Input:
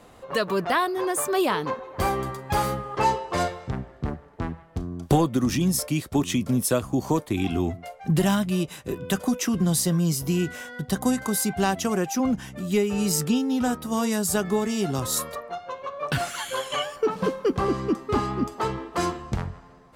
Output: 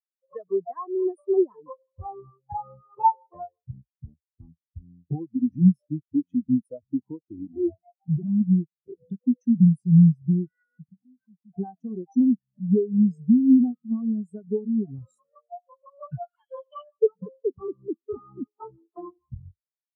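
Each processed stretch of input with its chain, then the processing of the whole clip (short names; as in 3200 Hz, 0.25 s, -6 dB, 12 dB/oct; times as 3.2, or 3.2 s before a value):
7.52–8.41 hard clip -26.5 dBFS + small resonant body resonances 340/650 Hz, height 9 dB, ringing for 85 ms
10.63–11.54 compressor 16:1, threshold -35 dBFS + bell 170 Hz +10.5 dB 0.41 oct
whole clip: compressor 4:1, threshold -26 dBFS; spectral expander 4:1; gain +5.5 dB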